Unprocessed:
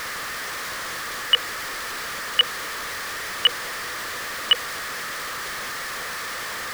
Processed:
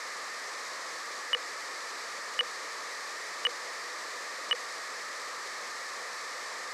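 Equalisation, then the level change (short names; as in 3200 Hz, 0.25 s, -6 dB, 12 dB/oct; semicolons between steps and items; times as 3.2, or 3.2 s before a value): speaker cabinet 420–9500 Hz, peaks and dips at 1500 Hz -7 dB, 2800 Hz -6 dB, 9500 Hz -8 dB; bell 3300 Hz -6.5 dB 0.28 oct; -5.0 dB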